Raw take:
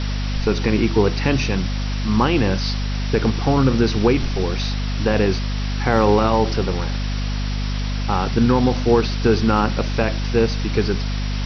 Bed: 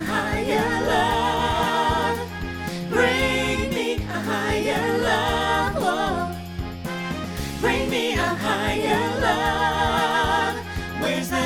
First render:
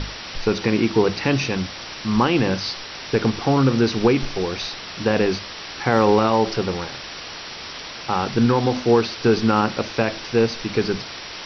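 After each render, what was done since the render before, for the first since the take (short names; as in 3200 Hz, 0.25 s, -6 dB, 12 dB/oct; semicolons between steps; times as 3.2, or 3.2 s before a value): notches 50/100/150/200/250 Hz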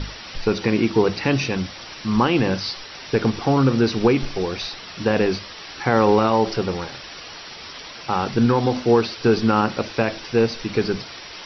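denoiser 6 dB, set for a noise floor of -35 dBFS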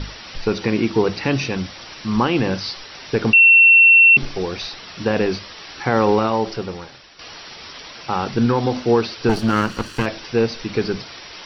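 3.33–4.17 bleep 2710 Hz -6.5 dBFS; 6.09–7.19 fade out, to -11.5 dB; 9.29–10.06 minimum comb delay 0.68 ms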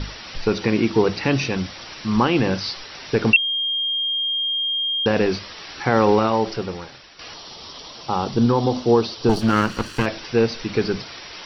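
3.36–5.06 bleep 3220 Hz -20 dBFS; 7.34–9.41 band shelf 1900 Hz -8.5 dB 1.1 oct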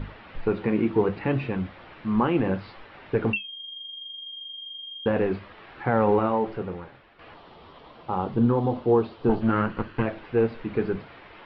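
flange 0.7 Hz, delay 8.3 ms, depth 5.3 ms, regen -57%; Gaussian blur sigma 3.6 samples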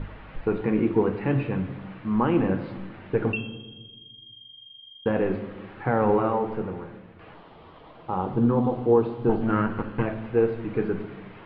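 air absorption 220 m; shoebox room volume 840 m³, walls mixed, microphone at 0.57 m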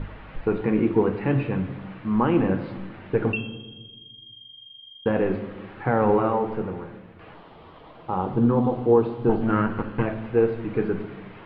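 gain +1.5 dB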